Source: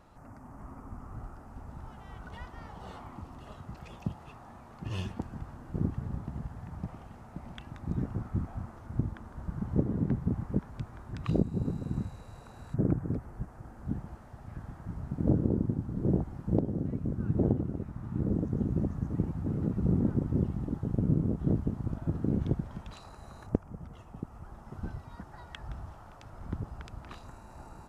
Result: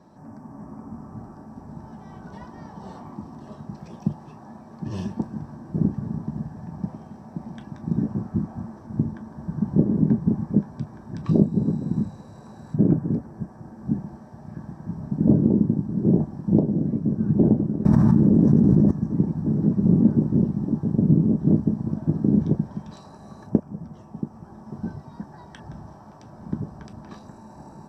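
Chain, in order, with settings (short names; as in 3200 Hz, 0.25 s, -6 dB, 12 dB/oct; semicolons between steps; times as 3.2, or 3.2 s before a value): reverb, pre-delay 3 ms, DRR 3 dB; 17.85–18.91 fast leveller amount 100%; gain -6 dB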